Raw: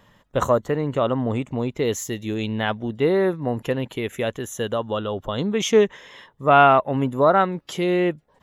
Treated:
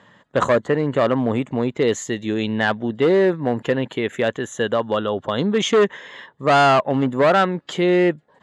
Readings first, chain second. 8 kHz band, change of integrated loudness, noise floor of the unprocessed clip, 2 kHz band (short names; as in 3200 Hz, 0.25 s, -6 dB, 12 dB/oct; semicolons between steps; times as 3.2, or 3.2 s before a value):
-0.5 dB, +2.0 dB, -61 dBFS, +4.0 dB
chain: overloaded stage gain 16 dB; speaker cabinet 140–7500 Hz, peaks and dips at 1700 Hz +5 dB, 2500 Hz -3 dB, 5600 Hz -10 dB; gain +4.5 dB